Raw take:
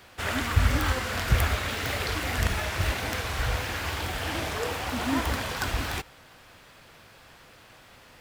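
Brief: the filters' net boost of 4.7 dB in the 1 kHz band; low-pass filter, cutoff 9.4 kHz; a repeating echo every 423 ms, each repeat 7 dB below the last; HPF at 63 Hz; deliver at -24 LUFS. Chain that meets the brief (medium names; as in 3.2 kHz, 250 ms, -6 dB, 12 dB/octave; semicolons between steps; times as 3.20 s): high-pass 63 Hz; low-pass 9.4 kHz; peaking EQ 1 kHz +6 dB; feedback delay 423 ms, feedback 45%, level -7 dB; trim +2.5 dB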